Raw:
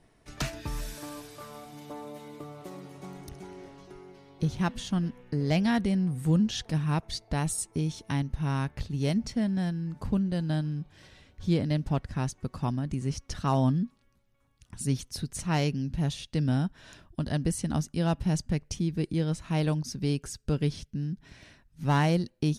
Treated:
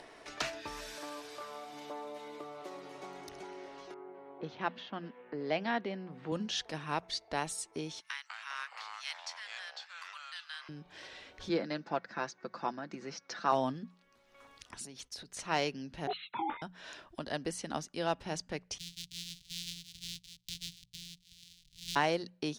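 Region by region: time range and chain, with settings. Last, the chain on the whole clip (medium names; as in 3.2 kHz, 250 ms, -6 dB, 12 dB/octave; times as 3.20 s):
3.94–6.32 s: level-controlled noise filter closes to 1.1 kHz, open at -23.5 dBFS + high-pass 150 Hz + distance through air 230 m
8.00–10.69 s: steep high-pass 1.2 kHz + ever faster or slower copies 172 ms, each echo -4 st, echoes 3, each echo -6 dB + loudspeaker Doppler distortion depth 0.13 ms
11.49–13.52 s: cabinet simulation 210–5800 Hz, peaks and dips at 210 Hz +8 dB, 1.5 kHz +6 dB, 3.1 kHz -8 dB + comb 5.9 ms, depth 42%
14.85–15.37 s: compression 8:1, threshold -37 dBFS + expander -49 dBFS
16.07–16.62 s: formants replaced by sine waves + ring modulator 570 Hz + detune thickener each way 48 cents
18.78–21.96 s: sorted samples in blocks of 256 samples + Chebyshev band-stop 140–3500 Hz, order 3
whole clip: three-band isolator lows -21 dB, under 340 Hz, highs -13 dB, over 6.6 kHz; hum notches 60/120/180 Hz; upward compressor, threshold -41 dBFS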